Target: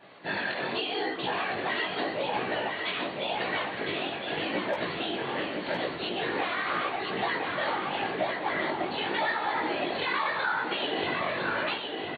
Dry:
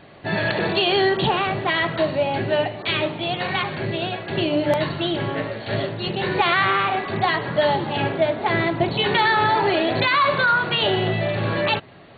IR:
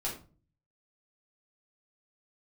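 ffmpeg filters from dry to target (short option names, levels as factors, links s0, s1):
-filter_complex "[0:a]aemphasis=mode=production:type=bsi,bandreject=f=610:w=12,acompressor=threshold=0.0708:ratio=6,afftfilt=real='hypot(re,im)*cos(2*PI*random(0))':imag='hypot(re,im)*sin(2*PI*random(1))':win_size=512:overlap=0.75,flanger=delay=15.5:depth=6.6:speed=0.84,highpass=140,lowpass=4100,asplit=2[s0][s1];[s1]aecho=0:1:1009|2018|3027|4036:0.631|0.215|0.0729|0.0248[s2];[s0][s2]amix=inputs=2:normalize=0,adynamicequalizer=threshold=0.00316:dfrequency=3000:dqfactor=0.7:tfrequency=3000:tqfactor=0.7:attack=5:release=100:ratio=0.375:range=2:mode=cutabove:tftype=highshelf,volume=1.78"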